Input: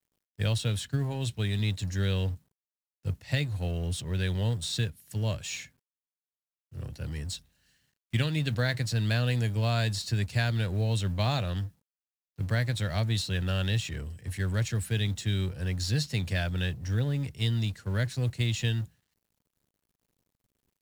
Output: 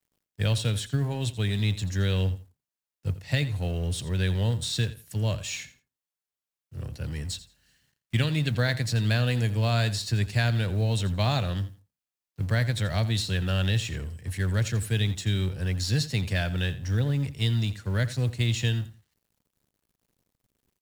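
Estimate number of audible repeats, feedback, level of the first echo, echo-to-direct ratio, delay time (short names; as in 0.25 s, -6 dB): 2, 21%, -15.5 dB, -15.5 dB, 85 ms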